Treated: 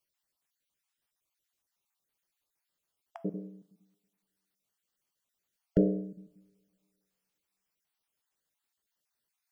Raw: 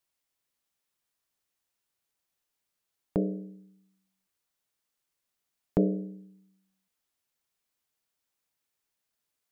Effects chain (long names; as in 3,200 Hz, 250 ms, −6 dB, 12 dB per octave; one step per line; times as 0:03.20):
time-frequency cells dropped at random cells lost 38%
coupled-rooms reverb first 0.63 s, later 2.2 s, from −21 dB, DRR 13.5 dB